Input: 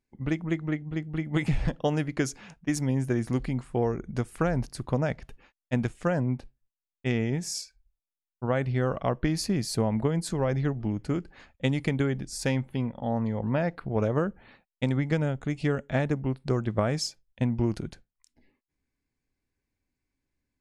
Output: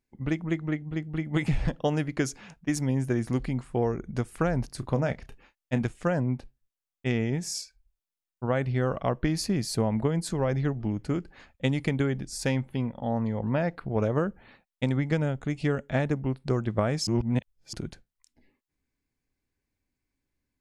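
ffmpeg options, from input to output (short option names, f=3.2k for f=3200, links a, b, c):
-filter_complex "[0:a]asettb=1/sr,asplit=3[a][b][c];[a]atrim=end=4.754[d];[b]atrim=start=4.75:end=5.82,asetpts=PTS-STARTPTS,afade=t=in:d=0.004:c=qsin,afade=t=out:st=1.066:d=0.004:c=qsin,asplit=2[e][f];[f]adelay=30,volume=-12dB[g];[e][g]amix=inputs=2:normalize=0,atrim=end_sample=47187[h];[c]atrim=start=5.816[i];[d][h]acrossfade=d=0.004:c1=hsin:c2=qsin[j];[j][i]acrossfade=d=0.004:c1=qsin:c2=hsin,asplit=3[k][l][m];[k]atrim=end=17.072[n];[l]atrim=start=17.068:end=17.732,asetpts=PTS-STARTPTS,areverse[o];[m]atrim=start=17.728[p];[n][o]acrossfade=d=0.004:c1=hsin:c2=hsin[q];[q][p]acrossfade=d=0.004:c1=hsin:c2=hsin"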